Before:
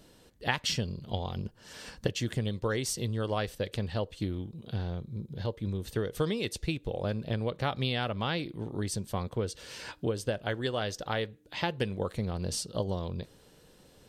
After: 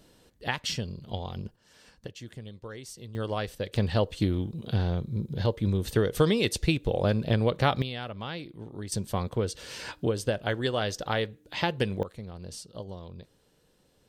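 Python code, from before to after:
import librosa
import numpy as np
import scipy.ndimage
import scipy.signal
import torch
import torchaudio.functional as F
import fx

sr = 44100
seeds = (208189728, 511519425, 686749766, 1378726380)

y = fx.gain(x, sr, db=fx.steps((0.0, -1.0), (1.56, -11.0), (3.15, 0.0), (3.76, 7.0), (7.82, -5.0), (8.92, 3.5), (12.03, -8.0)))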